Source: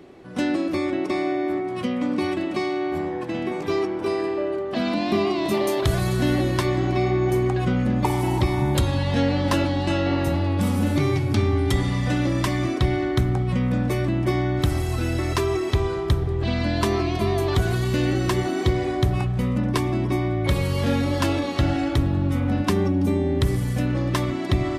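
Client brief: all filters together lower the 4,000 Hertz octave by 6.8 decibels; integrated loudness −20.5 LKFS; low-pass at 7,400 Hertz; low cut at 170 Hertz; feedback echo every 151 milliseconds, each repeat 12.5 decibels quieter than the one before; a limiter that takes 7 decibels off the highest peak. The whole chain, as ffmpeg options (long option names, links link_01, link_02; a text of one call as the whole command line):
ffmpeg -i in.wav -af "highpass=170,lowpass=7400,equalizer=frequency=4000:width_type=o:gain=-8.5,alimiter=limit=-16.5dB:level=0:latency=1,aecho=1:1:151|302|453:0.237|0.0569|0.0137,volume=5.5dB" out.wav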